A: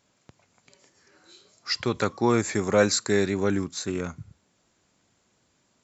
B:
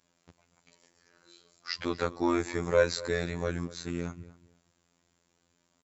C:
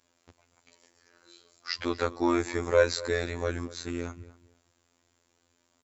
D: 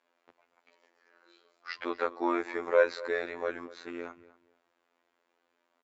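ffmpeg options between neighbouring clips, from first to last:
ffmpeg -i in.wav -filter_complex "[0:a]asplit=2[link_01][link_02];[link_02]adelay=240,lowpass=frequency=2700:poles=1,volume=-18dB,asplit=2[link_03][link_04];[link_04]adelay=240,lowpass=frequency=2700:poles=1,volume=0.24[link_05];[link_01][link_03][link_05]amix=inputs=3:normalize=0,acrossover=split=5400[link_06][link_07];[link_07]acompressor=threshold=-49dB:ratio=4:attack=1:release=60[link_08];[link_06][link_08]amix=inputs=2:normalize=0,afftfilt=real='hypot(re,im)*cos(PI*b)':imag='0':win_size=2048:overlap=0.75,volume=-1.5dB" out.wav
ffmpeg -i in.wav -af "equalizer=frequency=170:width=6.8:gain=-13,volume=2dB" out.wav
ffmpeg -i in.wav -af "highpass=410,lowpass=2400" out.wav

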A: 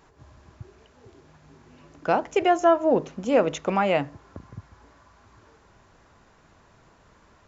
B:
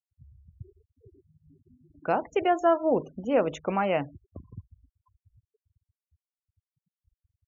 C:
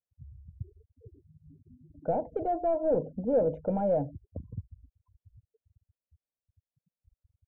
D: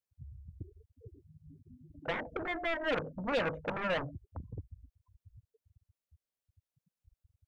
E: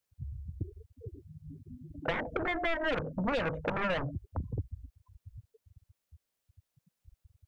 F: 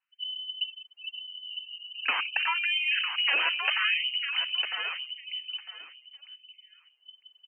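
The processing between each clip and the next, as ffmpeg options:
ffmpeg -i in.wav -af "equalizer=frequency=78:width=2.3:gain=4,afftfilt=real='re*gte(hypot(re,im),0.0158)':imag='im*gte(hypot(re,im),0.0158)':win_size=1024:overlap=0.75,highshelf=frequency=5300:gain=-9.5,volume=-3.5dB" out.wav
ffmpeg -i in.wav -af "asoftclip=type=tanh:threshold=-25.5dB,lowpass=frequency=460:width_type=q:width=3.4,aecho=1:1:1.3:0.8" out.wav
ffmpeg -i in.wav -af "aeval=exprs='0.158*(cos(1*acos(clip(val(0)/0.158,-1,1)))-cos(1*PI/2))+0.0316*(cos(3*acos(clip(val(0)/0.158,-1,1)))-cos(3*PI/2))+0.0316*(cos(7*acos(clip(val(0)/0.158,-1,1)))-cos(7*PI/2))':channel_layout=same,asoftclip=type=tanh:threshold=-25dB" out.wav
ffmpeg -i in.wav -filter_complex "[0:a]acrossover=split=130[link_01][link_02];[link_02]acompressor=threshold=-37dB:ratio=6[link_03];[link_01][link_03]amix=inputs=2:normalize=0,volume=8dB" out.wav
ffmpeg -i in.wav -af "aecho=1:1:953|1906|2859:0.447|0.0804|0.0145,lowpass=frequency=2600:width_type=q:width=0.5098,lowpass=frequency=2600:width_type=q:width=0.6013,lowpass=frequency=2600:width_type=q:width=0.9,lowpass=frequency=2600:width_type=q:width=2.563,afreqshift=-3100,afftfilt=real='re*gte(b*sr/1024,230*pow(2000/230,0.5+0.5*sin(2*PI*0.8*pts/sr)))':imag='im*gte(b*sr/1024,230*pow(2000/230,0.5+0.5*sin(2*PI*0.8*pts/sr)))':win_size=1024:overlap=0.75,volume=4.5dB" out.wav

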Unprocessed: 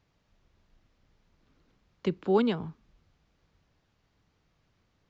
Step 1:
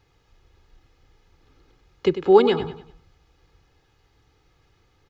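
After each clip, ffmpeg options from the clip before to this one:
ffmpeg -i in.wav -filter_complex "[0:a]aecho=1:1:2.4:0.63,asplit=2[link_01][link_02];[link_02]aecho=0:1:98|196|294|392:0.266|0.106|0.0426|0.017[link_03];[link_01][link_03]amix=inputs=2:normalize=0,volume=7.5dB" out.wav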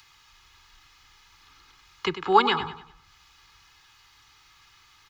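ffmpeg -i in.wav -filter_complex "[0:a]lowshelf=frequency=760:width_type=q:width=3:gain=-10,acrossover=split=140|470|2200[link_01][link_02][link_03][link_04];[link_04]acompressor=mode=upward:threshold=-52dB:ratio=2.5[link_05];[link_01][link_02][link_03][link_05]amix=inputs=4:normalize=0,volume=3.5dB" out.wav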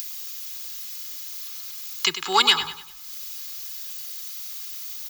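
ffmpeg -i in.wav -filter_complex "[0:a]asplit=2[link_01][link_02];[link_02]asoftclip=type=tanh:threshold=-13.5dB,volume=-9dB[link_03];[link_01][link_03]amix=inputs=2:normalize=0,aemphasis=mode=production:type=75fm,crystalizer=i=9.5:c=0,volume=-9dB" out.wav

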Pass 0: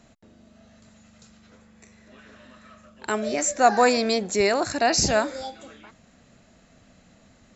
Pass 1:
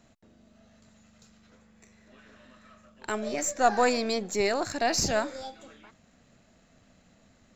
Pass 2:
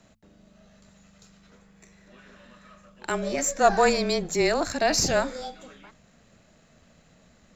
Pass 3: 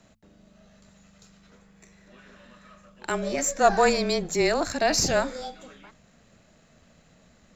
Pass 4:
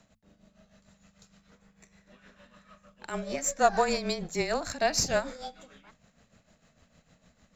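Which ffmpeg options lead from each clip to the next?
ffmpeg -i in.wav -af "aeval=exprs='if(lt(val(0),0),0.708*val(0),val(0))':channel_layout=same,volume=-4dB" out.wav
ffmpeg -i in.wav -af "bandreject=frequency=60:width_type=h:width=6,bandreject=frequency=120:width_type=h:width=6,bandreject=frequency=180:width_type=h:width=6,bandreject=frequency=240:width_type=h:width=6,afreqshift=-22,volume=3.5dB" out.wav
ffmpeg -i in.wav -af anull out.wav
ffmpeg -i in.wav -af "equalizer=frequency=360:width_type=o:width=0.39:gain=-6,tremolo=f=6.6:d=0.66,volume=-2dB" out.wav

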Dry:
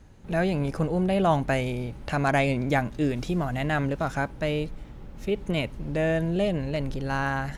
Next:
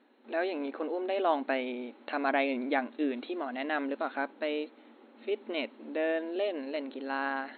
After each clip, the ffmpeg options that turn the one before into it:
ffmpeg -i in.wav -af "afftfilt=real='re*between(b*sr/4096,220,4300)':imag='im*between(b*sr/4096,220,4300)':win_size=4096:overlap=0.75,volume=-4.5dB" out.wav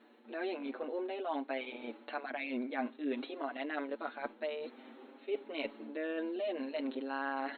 ffmpeg -i in.wav -filter_complex "[0:a]areverse,acompressor=threshold=-38dB:ratio=6,areverse,asplit=2[link_01][link_02];[link_02]adelay=6.5,afreqshift=0.5[link_03];[link_01][link_03]amix=inputs=2:normalize=1,volume=6dB" out.wav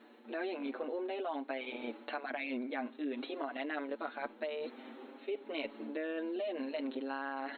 ffmpeg -i in.wav -af "acompressor=threshold=-38dB:ratio=6,volume=3.5dB" out.wav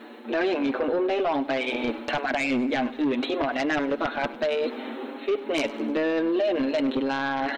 ffmpeg -i in.wav -af "aeval=exprs='0.0708*sin(PI/2*2.51*val(0)/0.0708)':channel_layout=same,aecho=1:1:101|202|303|404|505:0.119|0.0666|0.0373|0.0209|0.0117,volume=3.5dB" out.wav

